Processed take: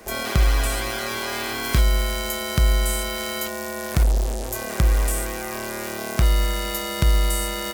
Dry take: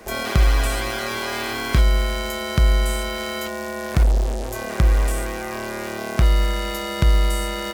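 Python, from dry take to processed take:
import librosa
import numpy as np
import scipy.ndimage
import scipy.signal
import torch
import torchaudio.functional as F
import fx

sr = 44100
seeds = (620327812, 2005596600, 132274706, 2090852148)

y = fx.high_shelf(x, sr, hz=6300.0, db=fx.steps((0.0, 6.0), (1.62, 11.0)))
y = y * librosa.db_to_amplitude(-2.0)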